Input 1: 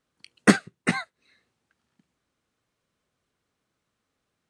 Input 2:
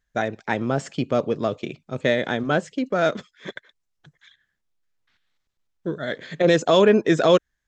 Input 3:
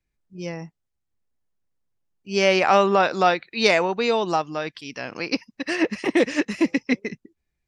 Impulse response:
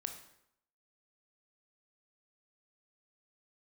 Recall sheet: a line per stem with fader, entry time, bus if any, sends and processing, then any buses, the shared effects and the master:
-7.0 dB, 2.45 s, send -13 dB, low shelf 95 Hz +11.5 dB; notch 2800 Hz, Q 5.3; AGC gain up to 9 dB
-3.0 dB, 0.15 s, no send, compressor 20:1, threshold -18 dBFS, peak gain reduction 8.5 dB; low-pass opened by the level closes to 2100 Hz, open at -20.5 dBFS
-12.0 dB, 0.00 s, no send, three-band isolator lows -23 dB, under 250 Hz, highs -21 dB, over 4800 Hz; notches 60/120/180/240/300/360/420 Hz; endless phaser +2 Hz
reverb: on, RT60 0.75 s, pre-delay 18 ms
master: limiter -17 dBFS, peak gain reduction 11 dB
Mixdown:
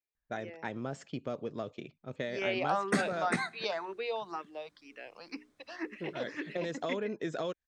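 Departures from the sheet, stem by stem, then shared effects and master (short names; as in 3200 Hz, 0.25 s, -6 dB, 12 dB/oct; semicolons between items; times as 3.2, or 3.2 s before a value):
stem 1: missing low shelf 95 Hz +11.5 dB; stem 2 -3.0 dB -> -13.0 dB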